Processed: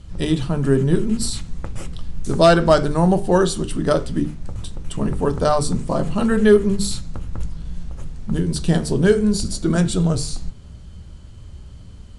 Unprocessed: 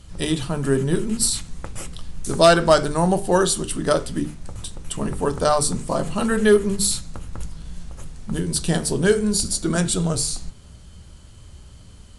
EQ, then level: distance through air 51 m; bass shelf 420 Hz +6.5 dB; -1.0 dB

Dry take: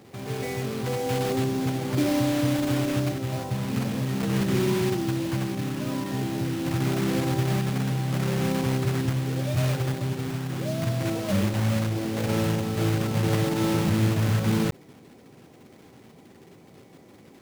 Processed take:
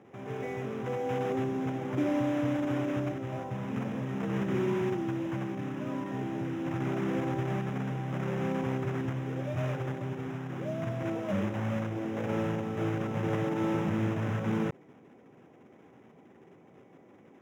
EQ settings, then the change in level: boxcar filter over 10 samples; high-pass 210 Hz 6 dB/octave; -3.0 dB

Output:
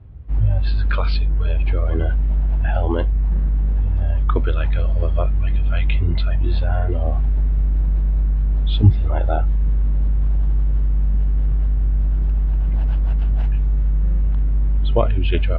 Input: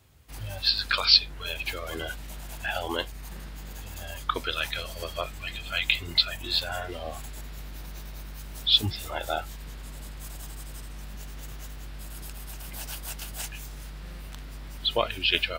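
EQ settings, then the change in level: distance through air 350 m; tilt EQ -4.5 dB/octave; +4.5 dB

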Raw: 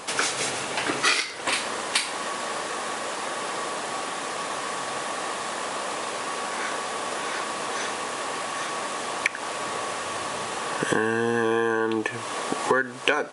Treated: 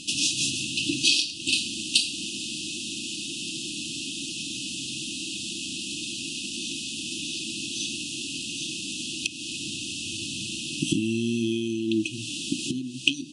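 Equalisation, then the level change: brick-wall FIR band-stop 350–2500 Hz; low-pass 7.9 kHz 12 dB/octave; hum notches 60/120/180/240/300 Hz; +5.0 dB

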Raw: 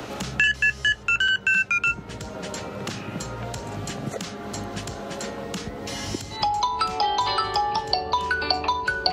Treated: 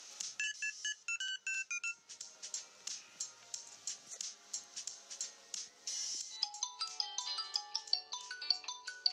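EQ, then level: band-pass filter 6.1 kHz, Q 3.7; 0.0 dB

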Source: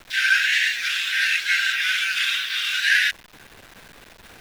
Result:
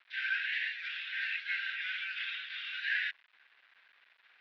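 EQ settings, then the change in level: Butterworth band-pass 2.9 kHz, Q 0.87; distance through air 260 m; tilt EQ -2.5 dB/octave; -7.5 dB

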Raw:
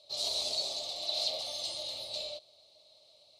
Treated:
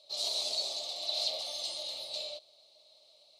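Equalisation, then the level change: high-pass 360 Hz 6 dB/octave; 0.0 dB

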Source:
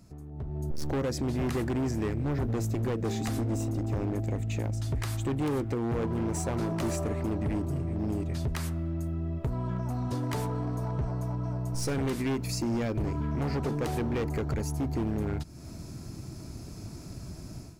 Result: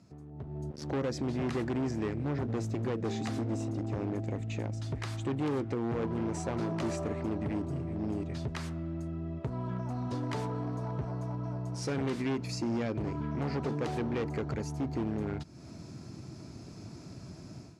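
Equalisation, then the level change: band-pass 110–5900 Hz; -2.0 dB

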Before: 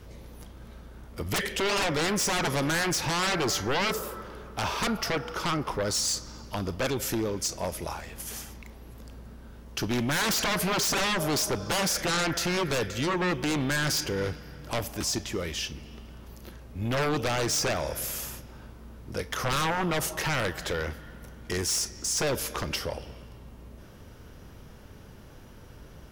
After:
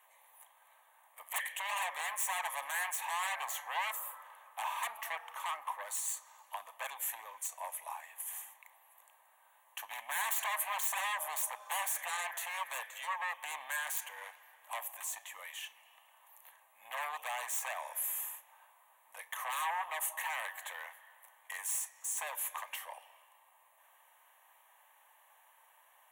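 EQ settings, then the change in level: high-pass 920 Hz 24 dB/octave; high-order bell 3.6 kHz -9 dB; static phaser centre 1.4 kHz, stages 6; 0.0 dB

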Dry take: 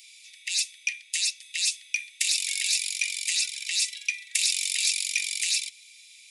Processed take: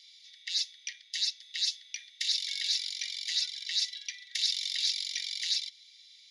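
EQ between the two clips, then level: high-pass 1.5 kHz 12 dB/octave; distance through air 90 m; static phaser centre 2.5 kHz, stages 6; +2.5 dB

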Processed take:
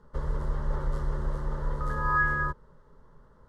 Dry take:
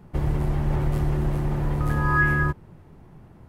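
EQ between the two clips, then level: distance through air 81 m; peaking EQ 190 Hz -14.5 dB 1 oct; static phaser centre 490 Hz, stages 8; 0.0 dB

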